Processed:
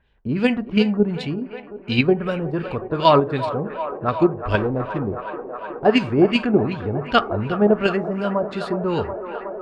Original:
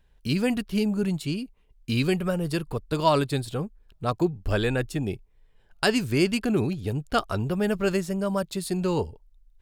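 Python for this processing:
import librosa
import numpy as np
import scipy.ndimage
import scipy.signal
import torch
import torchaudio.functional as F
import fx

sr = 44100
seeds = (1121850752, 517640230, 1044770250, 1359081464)

p1 = fx.median_filter(x, sr, points=41, at=(4.57, 5.85))
p2 = fx.highpass(p1, sr, hz=70.0, slope=6)
p3 = p2 + fx.echo_wet_bandpass(p2, sr, ms=367, feedback_pct=82, hz=890.0, wet_db=-8.5, dry=0)
p4 = fx.rev_gated(p3, sr, seeds[0], gate_ms=160, shape='falling', drr_db=11.5)
p5 = fx.filter_lfo_lowpass(p4, sr, shape='sine', hz=2.7, low_hz=710.0, high_hz=3500.0, q=1.6)
p6 = fx.level_steps(p5, sr, step_db=21)
p7 = p5 + (p6 * 10.0 ** (-1.0 / 20.0))
y = p7 * 10.0 ** (2.0 / 20.0)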